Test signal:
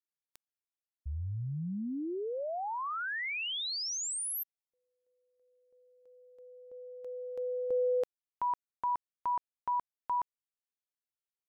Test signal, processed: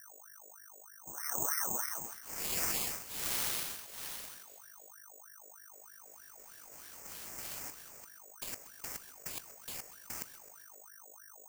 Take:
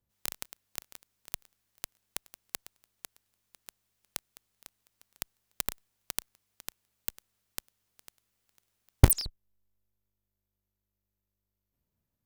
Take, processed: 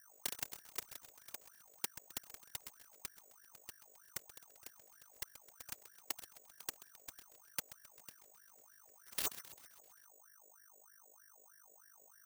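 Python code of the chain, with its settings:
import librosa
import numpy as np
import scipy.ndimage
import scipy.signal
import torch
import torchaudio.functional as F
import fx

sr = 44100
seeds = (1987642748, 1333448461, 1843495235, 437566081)

p1 = fx.wiener(x, sr, points=15)
p2 = fx.over_compress(p1, sr, threshold_db=-36.0, ratio=-0.5)
p3 = fx.fixed_phaser(p2, sr, hz=1500.0, stages=6)
p4 = fx.noise_vocoder(p3, sr, seeds[0], bands=3)
p5 = fx.add_hum(p4, sr, base_hz=50, snr_db=12)
p6 = p5 + fx.echo_feedback(p5, sr, ms=131, feedback_pct=57, wet_db=-14.5, dry=0)
p7 = (np.kron(p6[::6], np.eye(6)[0]) * 6)[:len(p6)]
p8 = fx.ring_lfo(p7, sr, carrier_hz=1100.0, swing_pct=55, hz=3.2)
y = p8 * librosa.db_to_amplitude(-3.0)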